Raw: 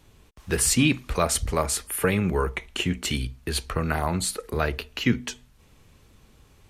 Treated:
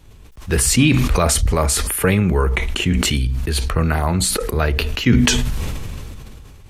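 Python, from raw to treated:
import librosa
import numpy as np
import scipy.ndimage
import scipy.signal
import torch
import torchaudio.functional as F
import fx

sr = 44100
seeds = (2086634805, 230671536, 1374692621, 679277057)

y = fx.low_shelf(x, sr, hz=120.0, db=8.5)
y = fx.sustainer(y, sr, db_per_s=21.0)
y = F.gain(torch.from_numpy(y), 4.0).numpy()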